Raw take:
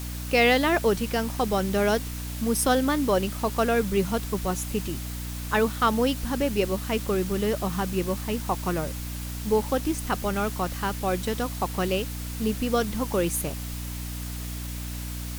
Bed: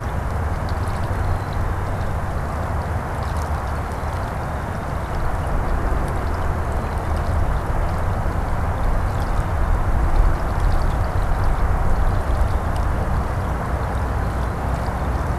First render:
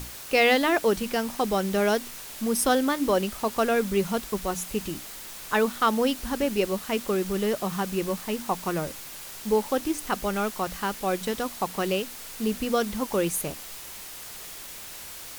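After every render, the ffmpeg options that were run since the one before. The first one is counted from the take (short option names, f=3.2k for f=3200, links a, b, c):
-af "bandreject=f=60:t=h:w=6,bandreject=f=120:t=h:w=6,bandreject=f=180:t=h:w=6,bandreject=f=240:t=h:w=6,bandreject=f=300:t=h:w=6"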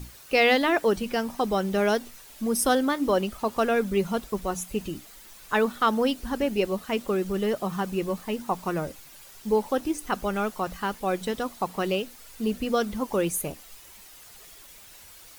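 -af "afftdn=nr=10:nf=-41"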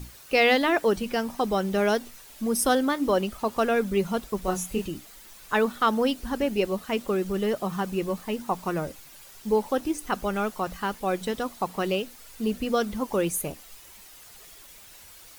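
-filter_complex "[0:a]asettb=1/sr,asplit=3[a][b][c];[a]atrim=end=4.424[d];[b]atrim=start=4.42:end=4.85,asetpts=PTS-STARTPTS,afade=t=in:d=0.004:c=qsin,afade=t=out:st=0.426:d=0.004:c=qsin,asplit=2[e][f];[f]adelay=27,volume=-3dB[g];[e][g]amix=inputs=2:normalize=0,atrim=end_sample=18963[h];[c]atrim=start=4.846[i];[d][h]acrossfade=d=0.004:c1=hsin:c2=qsin[j];[j][i]acrossfade=d=0.004:c1=qsin:c2=hsin"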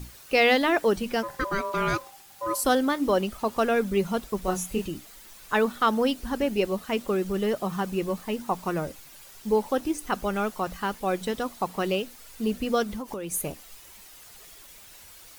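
-filter_complex "[0:a]asplit=3[a][b][c];[a]afade=t=out:st=1.22:d=0.02[d];[b]aeval=exprs='val(0)*sin(2*PI*790*n/s)':c=same,afade=t=in:st=1.22:d=0.02,afade=t=out:st=2.63:d=0.02[e];[c]afade=t=in:st=2.63:d=0.02[f];[d][e][f]amix=inputs=3:normalize=0,asettb=1/sr,asplit=3[g][h][i];[g]atrim=end=12.834[j];[h]atrim=start=12.83:end=13.32,asetpts=PTS-STARTPTS,afade=t=in:d=0.004:c=qsin,afade=t=out:st=0.486:d=0.004:c=qsin,acompressor=threshold=-30dB:ratio=12:attack=3.2:release=140:knee=1:detection=peak[k];[i]atrim=start=13.316[l];[j][k]acrossfade=d=0.004:c1=hsin:c2=qsin[m];[m][l]acrossfade=d=0.004:c1=qsin:c2=hsin"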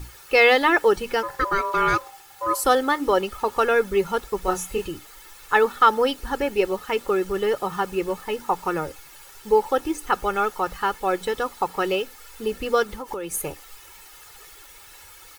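-af "equalizer=f=1.3k:t=o:w=1.6:g=6.5,aecho=1:1:2.3:0.6"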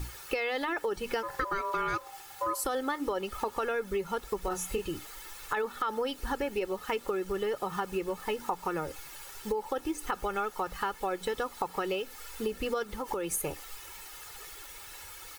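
-af "alimiter=limit=-13dB:level=0:latency=1:release=27,acompressor=threshold=-29dB:ratio=6"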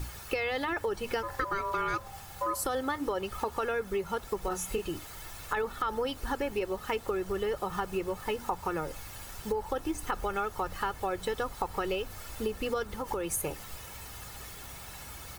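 -filter_complex "[1:a]volume=-27.5dB[a];[0:a][a]amix=inputs=2:normalize=0"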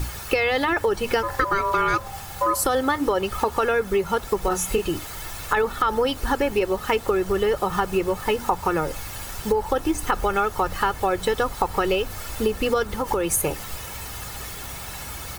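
-af "volume=10dB"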